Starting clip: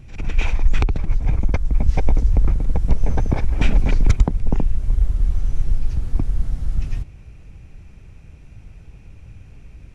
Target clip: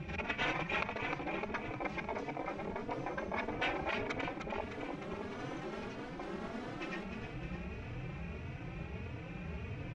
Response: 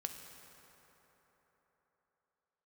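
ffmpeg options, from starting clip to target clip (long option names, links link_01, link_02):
-filter_complex "[0:a]highpass=120,lowpass=2800,areverse,acompressor=threshold=-35dB:ratio=5,areverse,equalizer=frequency=250:width=6.2:gain=-9,bandreject=frequency=50:width_type=h:width=6,bandreject=frequency=100:width_type=h:width=6,bandreject=frequency=150:width_type=h:width=6,bandreject=frequency=200:width_type=h:width=6,aecho=1:1:305|610|915|1220|1525|1830|2135|2440:0.447|0.264|0.155|0.0917|0.0541|0.0319|0.0188|0.0111,afftfilt=real='re*lt(hypot(re,im),0.0398)':imag='im*lt(hypot(re,im),0.0398)':win_size=1024:overlap=0.75,asplit=2[link_01][link_02];[link_02]adelay=3.4,afreqshift=1.6[link_03];[link_01][link_03]amix=inputs=2:normalize=1,volume=11.5dB"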